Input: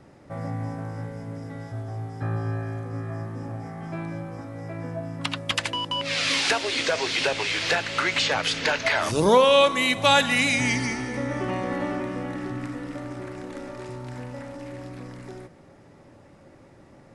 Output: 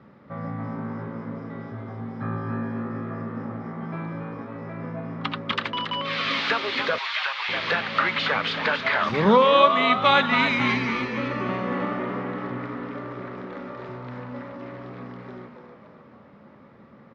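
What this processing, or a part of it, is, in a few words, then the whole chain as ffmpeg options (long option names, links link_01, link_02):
frequency-shifting delay pedal into a guitar cabinet: -filter_complex "[0:a]asplit=7[link_01][link_02][link_03][link_04][link_05][link_06][link_07];[link_02]adelay=277,afreqshift=120,volume=-7.5dB[link_08];[link_03]adelay=554,afreqshift=240,volume=-13.7dB[link_09];[link_04]adelay=831,afreqshift=360,volume=-19.9dB[link_10];[link_05]adelay=1108,afreqshift=480,volume=-26.1dB[link_11];[link_06]adelay=1385,afreqshift=600,volume=-32.3dB[link_12];[link_07]adelay=1662,afreqshift=720,volume=-38.5dB[link_13];[link_01][link_08][link_09][link_10][link_11][link_12][link_13]amix=inputs=7:normalize=0,highpass=84,equalizer=frequency=100:width_type=q:width=4:gain=-6,equalizer=frequency=210:width_type=q:width=4:gain=8,equalizer=frequency=320:width_type=q:width=4:gain=-6,equalizer=frequency=720:width_type=q:width=4:gain=-6,equalizer=frequency=1200:width_type=q:width=4:gain=7,equalizer=frequency=2700:width_type=q:width=4:gain=-4,lowpass=frequency=3700:width=0.5412,lowpass=frequency=3700:width=1.3066,asettb=1/sr,asplit=3[link_14][link_15][link_16];[link_14]atrim=end=6.984[link_17];[link_15]atrim=start=6.98:end=7.49,asetpts=PTS-STARTPTS,afade=type=in:duration=0.004:curve=qsin,afade=type=out:start_time=0.506:duration=0.004:curve=qsin,highpass=frequency=880:width=0.5412,highpass=frequency=880:width=1.3066[link_18];[link_16]atrim=start=7.486[link_19];[link_17][link_18]acrossfade=duration=0.004:curve1=hsin:curve2=qsin[link_20];[link_20][link_19]acrossfade=duration=0.004:curve1=qsin:curve2=hsin"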